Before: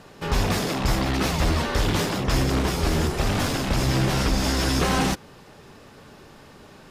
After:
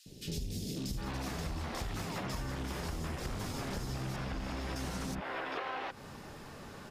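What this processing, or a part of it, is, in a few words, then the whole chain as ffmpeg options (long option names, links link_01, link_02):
serial compression, peaks first: -filter_complex "[0:a]asettb=1/sr,asplit=3[link_01][link_02][link_03];[link_01]atrim=end=4.164[link_04];[link_02]atrim=start=4.16:end=4.76,asetpts=PTS-STARTPTS,afade=type=in:duration=0.004:curve=qsin,afade=type=out:start_time=0.596:duration=0.004:curve=qsin,bass=frequency=250:gain=-2,treble=frequency=4000:gain=-12[link_05];[link_03]atrim=start=4.756[link_06];[link_04][link_05]acrossfade=duration=0.004:curve1=hsin:curve2=qsin[link_07];[link_07][link_06]acrossfade=duration=0.004:curve1=qsin:curve2=hsin,acrossover=split=400|3300[link_08][link_09][link_10];[link_08]adelay=60[link_11];[link_09]adelay=760[link_12];[link_11][link_12][link_10]amix=inputs=3:normalize=0,acompressor=threshold=-31dB:ratio=6,acompressor=threshold=-38dB:ratio=2"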